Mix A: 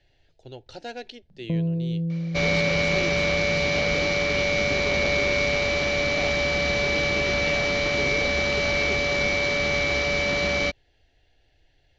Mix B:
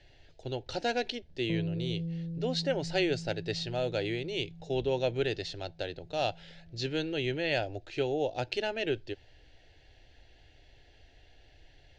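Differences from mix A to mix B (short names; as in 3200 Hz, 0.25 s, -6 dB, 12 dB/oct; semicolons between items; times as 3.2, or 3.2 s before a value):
speech +5.5 dB; first sound -8.5 dB; second sound: muted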